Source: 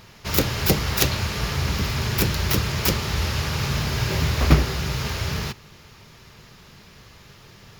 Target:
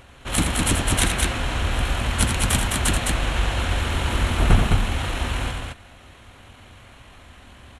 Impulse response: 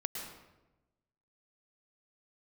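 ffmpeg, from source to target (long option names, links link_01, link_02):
-af "asetrate=26222,aresample=44100,atempo=1.68179,aecho=1:1:81.63|209.9:0.447|0.708"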